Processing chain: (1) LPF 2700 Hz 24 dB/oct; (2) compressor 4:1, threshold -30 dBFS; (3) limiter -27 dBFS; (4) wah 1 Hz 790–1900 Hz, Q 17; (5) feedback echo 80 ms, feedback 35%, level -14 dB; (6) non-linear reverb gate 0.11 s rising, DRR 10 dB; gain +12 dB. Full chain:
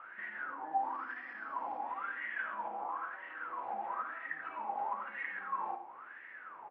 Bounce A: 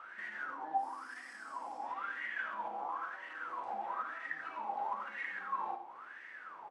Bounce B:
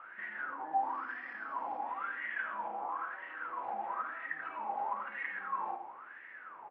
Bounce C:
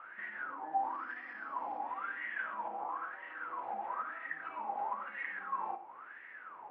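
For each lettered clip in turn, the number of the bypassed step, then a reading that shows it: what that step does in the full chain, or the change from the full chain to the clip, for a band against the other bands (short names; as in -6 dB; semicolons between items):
1, momentary loudness spread change +2 LU; 2, mean gain reduction 8.0 dB; 5, echo-to-direct -8.0 dB to -10.0 dB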